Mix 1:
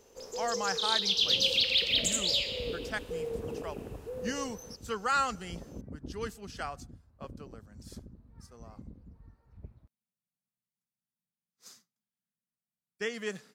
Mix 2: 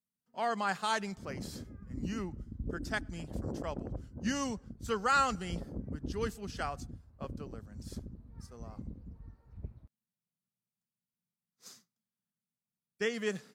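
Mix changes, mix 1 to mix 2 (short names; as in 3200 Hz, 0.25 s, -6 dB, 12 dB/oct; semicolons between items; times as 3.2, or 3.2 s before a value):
first sound: muted; master: add low shelf 440 Hz +4.5 dB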